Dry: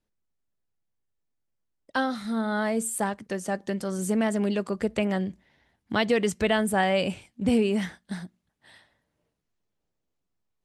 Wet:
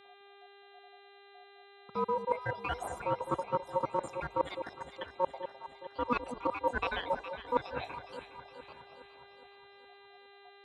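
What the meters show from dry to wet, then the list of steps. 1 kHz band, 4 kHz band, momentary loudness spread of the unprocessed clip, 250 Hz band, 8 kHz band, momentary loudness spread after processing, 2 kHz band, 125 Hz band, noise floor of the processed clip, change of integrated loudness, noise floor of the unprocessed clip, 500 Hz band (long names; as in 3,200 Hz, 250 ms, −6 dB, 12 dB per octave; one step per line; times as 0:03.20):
−1.5 dB, −11.5 dB, 9 LU, −17.5 dB, −21.5 dB, 22 LU, −9.5 dB, −12.0 dB, −57 dBFS, −9.0 dB, −81 dBFS, −8.0 dB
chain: time-frequency cells dropped at random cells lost 81%
notch filter 1,200 Hz, Q 5.6
in parallel at −12 dB: decimation without filtering 41×
on the sum: spectral tilt −2.5 dB per octave
ring modulation 730 Hz
high-shelf EQ 5,200 Hz −11 dB
reversed playback
downward compressor 8 to 1, threshold −37 dBFS, peak gain reduction 20.5 dB
reversed playback
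hum with harmonics 400 Hz, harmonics 10, −67 dBFS −3 dB per octave
high-pass filter 60 Hz
mains-hum notches 50/100 Hz
delay that swaps between a low-pass and a high-pass 207 ms, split 880 Hz, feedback 73%, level −8.5 dB
level +8.5 dB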